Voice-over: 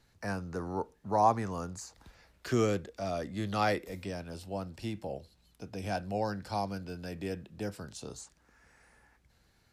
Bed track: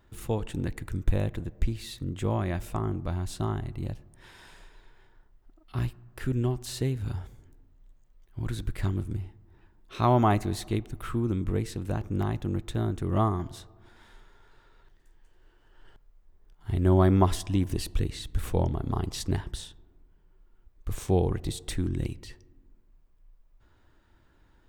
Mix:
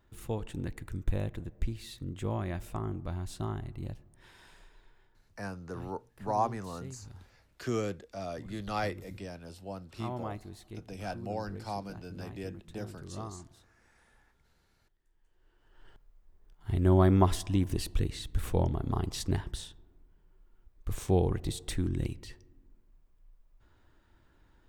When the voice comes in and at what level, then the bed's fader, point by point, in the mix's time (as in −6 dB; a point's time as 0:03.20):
5.15 s, −4.0 dB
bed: 0:04.91 −5.5 dB
0:05.74 −16.5 dB
0:14.95 −16.5 dB
0:15.83 −2 dB